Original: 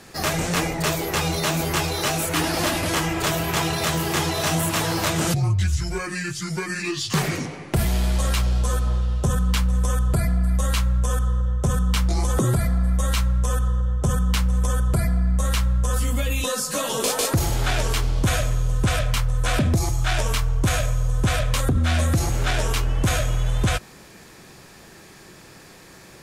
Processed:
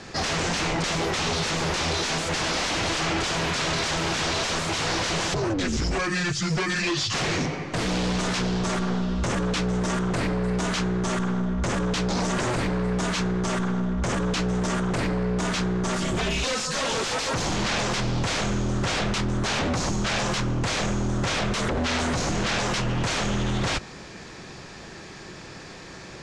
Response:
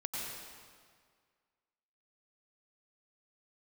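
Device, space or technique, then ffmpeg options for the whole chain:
synthesiser wavefolder: -af "aeval=exprs='0.0562*(abs(mod(val(0)/0.0562+3,4)-2)-1)':channel_layout=same,lowpass=frequency=6700:width=0.5412,lowpass=frequency=6700:width=1.3066,volume=5dB"

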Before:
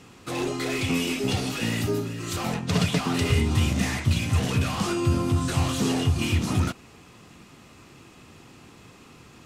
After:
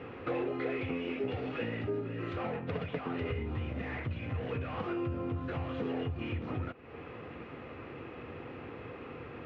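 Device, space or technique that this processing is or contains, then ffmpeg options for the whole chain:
bass amplifier: -af "acompressor=threshold=-39dB:ratio=5,highpass=62,equalizer=frequency=130:width_type=q:width=4:gain=-3,equalizer=frequency=190:width_type=q:width=4:gain=-9,equalizer=frequency=490:width_type=q:width=4:gain=9,equalizer=frequency=1000:width_type=q:width=4:gain=-3,lowpass=frequency=2400:width=0.5412,lowpass=frequency=2400:width=1.3066,volume=5.5dB"

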